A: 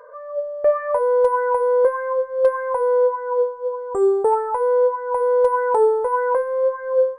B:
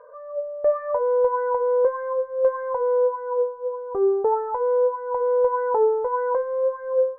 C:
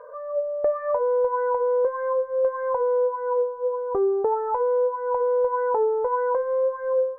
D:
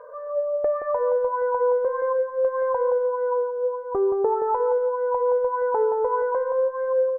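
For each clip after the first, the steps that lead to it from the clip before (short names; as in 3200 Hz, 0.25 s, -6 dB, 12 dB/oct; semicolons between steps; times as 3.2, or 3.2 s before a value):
LPF 1300 Hz 12 dB/oct; gain -3 dB
compressor 3:1, threshold -26 dBFS, peak gain reduction 9 dB; gain +4.5 dB
feedback echo 0.173 s, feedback 22%, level -8 dB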